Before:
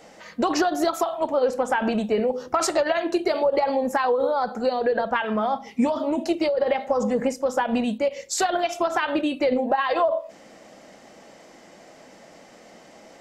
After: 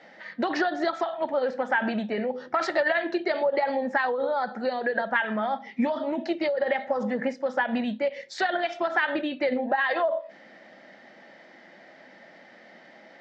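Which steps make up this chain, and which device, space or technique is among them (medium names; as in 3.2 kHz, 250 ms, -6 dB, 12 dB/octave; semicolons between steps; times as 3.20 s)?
kitchen radio (cabinet simulation 220–4000 Hz, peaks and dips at 300 Hz -4 dB, 450 Hz -9 dB, 720 Hz -3 dB, 1.1 kHz -8 dB, 1.8 kHz +8 dB, 2.7 kHz -6 dB)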